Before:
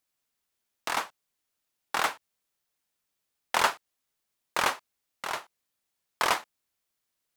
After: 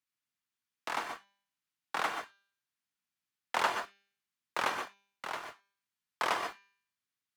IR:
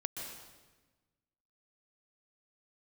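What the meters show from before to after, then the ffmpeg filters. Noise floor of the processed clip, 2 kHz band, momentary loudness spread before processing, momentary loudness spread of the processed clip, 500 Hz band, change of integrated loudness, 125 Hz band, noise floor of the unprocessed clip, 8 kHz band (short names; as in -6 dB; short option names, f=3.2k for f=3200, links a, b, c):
under -85 dBFS, -5.0 dB, 15 LU, 14 LU, -4.0 dB, -6.0 dB, -6.0 dB, -82 dBFS, -10.0 dB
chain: -filter_complex "[0:a]highpass=120,aemphasis=mode=reproduction:type=cd,bandreject=f=198.6:t=h:w=4,bandreject=f=397.2:t=h:w=4,bandreject=f=595.8:t=h:w=4,bandreject=f=794.4:t=h:w=4,bandreject=f=993:t=h:w=4,bandreject=f=1.1916k:t=h:w=4,bandreject=f=1.3902k:t=h:w=4,bandreject=f=1.5888k:t=h:w=4,bandreject=f=1.7874k:t=h:w=4,bandreject=f=1.986k:t=h:w=4,bandreject=f=2.1846k:t=h:w=4,bandreject=f=2.3832k:t=h:w=4,bandreject=f=2.5818k:t=h:w=4,bandreject=f=2.7804k:t=h:w=4,bandreject=f=2.979k:t=h:w=4,bandreject=f=3.1776k:t=h:w=4,bandreject=f=3.3762k:t=h:w=4,bandreject=f=3.5748k:t=h:w=4,bandreject=f=3.7734k:t=h:w=4,bandreject=f=3.972k:t=h:w=4,bandreject=f=4.1706k:t=h:w=4,bandreject=f=4.3692k:t=h:w=4,bandreject=f=4.5678k:t=h:w=4,bandreject=f=4.7664k:t=h:w=4,bandreject=f=4.965k:t=h:w=4,bandreject=f=5.1636k:t=h:w=4,bandreject=f=5.3622k:t=h:w=4,bandreject=f=5.5608k:t=h:w=4,bandreject=f=5.7594k:t=h:w=4,bandreject=f=5.958k:t=h:w=4,bandreject=f=6.1566k:t=h:w=4,bandreject=f=6.3552k:t=h:w=4,bandreject=f=6.5538k:t=h:w=4[a];[1:a]atrim=start_sample=2205,atrim=end_sample=6615[b];[a][b]afir=irnorm=-1:irlink=0,acrossover=split=310|900|7400[c][d][e][f];[d]aeval=exprs='val(0)*gte(abs(val(0)),0.00422)':c=same[g];[c][g][e][f]amix=inputs=4:normalize=0,volume=-3dB"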